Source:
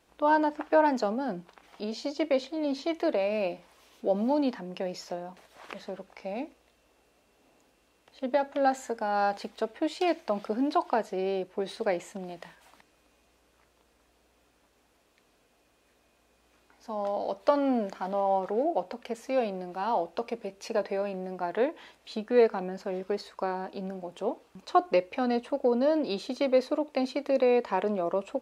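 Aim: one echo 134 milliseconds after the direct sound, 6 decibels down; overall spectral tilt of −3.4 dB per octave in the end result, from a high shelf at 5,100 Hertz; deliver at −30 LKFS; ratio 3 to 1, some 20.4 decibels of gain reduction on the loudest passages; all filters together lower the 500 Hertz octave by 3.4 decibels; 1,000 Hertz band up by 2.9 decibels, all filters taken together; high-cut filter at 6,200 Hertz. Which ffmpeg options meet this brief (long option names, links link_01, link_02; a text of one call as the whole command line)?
ffmpeg -i in.wav -af "lowpass=6200,equalizer=frequency=500:width_type=o:gain=-6,equalizer=frequency=1000:width_type=o:gain=6,highshelf=frequency=5100:gain=3.5,acompressor=threshold=-46dB:ratio=3,aecho=1:1:134:0.501,volume=15dB" out.wav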